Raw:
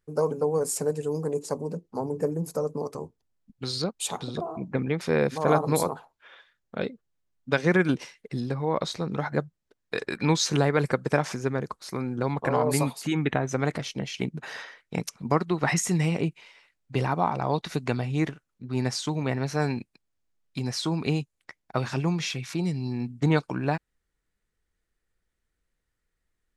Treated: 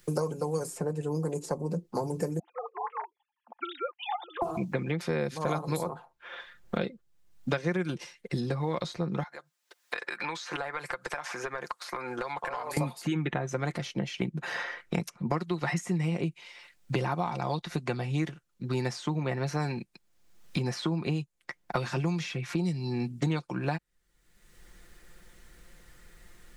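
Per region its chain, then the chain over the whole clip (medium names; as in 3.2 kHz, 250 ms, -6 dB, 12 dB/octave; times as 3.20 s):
2.39–4.42 s: formants replaced by sine waves + ladder high-pass 720 Hz, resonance 55%
9.23–12.77 s: high-pass 870 Hz + compression 4:1, threshold -44 dBFS
whole clip: comb 5.7 ms, depth 48%; three bands compressed up and down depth 100%; trim -5 dB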